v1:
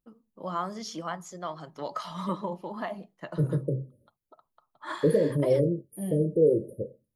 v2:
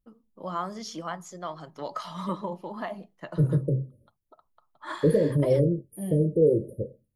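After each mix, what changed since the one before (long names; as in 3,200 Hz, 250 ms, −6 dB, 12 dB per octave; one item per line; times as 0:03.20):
second voice: add low-shelf EQ 110 Hz +11.5 dB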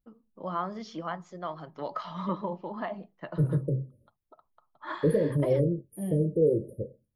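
first voice: add Gaussian smoothing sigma 2 samples
second voice −3.0 dB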